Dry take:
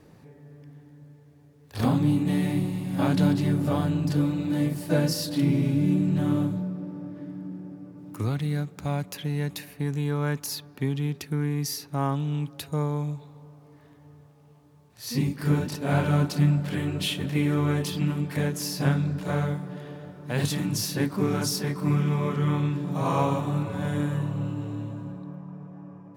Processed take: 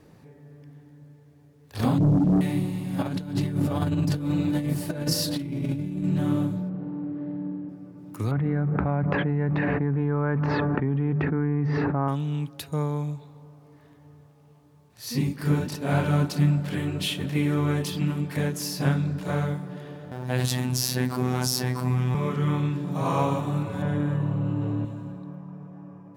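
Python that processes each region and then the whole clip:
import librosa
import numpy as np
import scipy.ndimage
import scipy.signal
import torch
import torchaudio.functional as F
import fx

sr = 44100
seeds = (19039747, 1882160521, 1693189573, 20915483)

y = fx.chain(x, sr, fx.envelope_sharpen(power=3.0),
    fx.doubler(ms=32.0, db=-11),
    fx.leveller(passes=2), at=(1.98, 2.41))
y = fx.chain(y, sr, fx.over_compress(threshold_db=-26.0, ratio=-0.5),
    fx.peak_eq(hz=76.0, db=5.0, octaves=1.0), at=(3.02, 6.04))
y = fx.chain(y, sr, fx.self_delay(depth_ms=0.21),
    fx.air_absorb(metres=290.0),
    fx.room_flutter(wall_m=8.2, rt60_s=0.76), at=(6.69, 7.69))
y = fx.chain(y, sr, fx.lowpass(hz=1700.0, slope=24),
    fx.hum_notches(base_hz=50, count=5),
    fx.env_flatten(amount_pct=100), at=(8.31, 12.08))
y = fx.chain(y, sr, fx.peak_eq(hz=730.0, db=4.0, octaves=0.31),
    fx.robotise(hz=126.0),
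    fx.env_flatten(amount_pct=50), at=(20.11, 22.15))
y = fx.chain(y, sr, fx.lowpass(hz=1700.0, slope=6),
    fx.env_flatten(amount_pct=70), at=(23.82, 24.85))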